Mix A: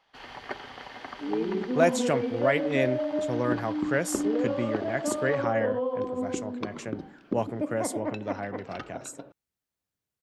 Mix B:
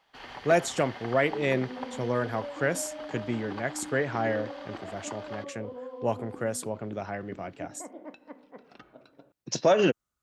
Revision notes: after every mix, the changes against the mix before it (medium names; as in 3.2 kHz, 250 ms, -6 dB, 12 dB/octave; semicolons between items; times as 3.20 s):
speech: entry -1.30 s; second sound -11.5 dB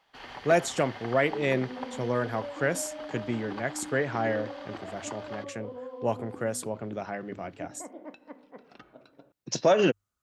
speech: add hum notches 50/100 Hz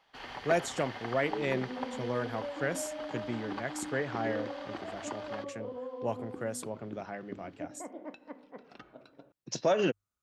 speech -5.5 dB